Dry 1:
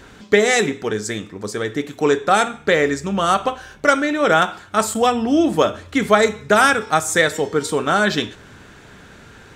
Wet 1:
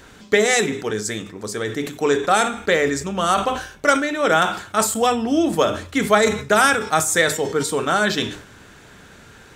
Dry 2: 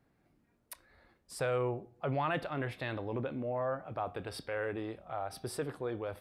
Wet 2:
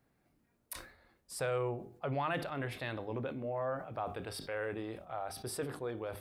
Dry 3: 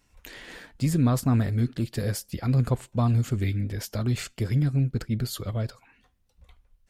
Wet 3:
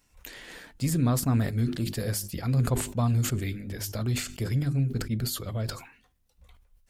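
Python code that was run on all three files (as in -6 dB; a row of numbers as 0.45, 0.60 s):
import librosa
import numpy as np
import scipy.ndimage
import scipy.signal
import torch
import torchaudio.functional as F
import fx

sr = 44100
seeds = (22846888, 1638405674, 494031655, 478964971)

y = fx.high_shelf(x, sr, hz=6900.0, db=7.0)
y = fx.hum_notches(y, sr, base_hz=50, count=8)
y = fx.sustainer(y, sr, db_per_s=100.0)
y = y * 10.0 ** (-2.0 / 20.0)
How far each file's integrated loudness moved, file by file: -1.5, -2.0, -2.0 LU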